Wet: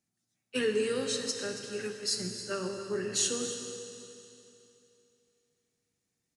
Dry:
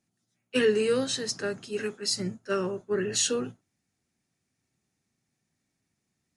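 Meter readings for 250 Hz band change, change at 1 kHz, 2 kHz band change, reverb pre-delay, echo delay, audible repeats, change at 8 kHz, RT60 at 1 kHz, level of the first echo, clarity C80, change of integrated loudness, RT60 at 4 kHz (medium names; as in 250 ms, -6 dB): -5.5 dB, -5.0 dB, -4.5 dB, 21 ms, 277 ms, 1, -1.0 dB, 2.9 s, -13.0 dB, 5.5 dB, -4.5 dB, 2.8 s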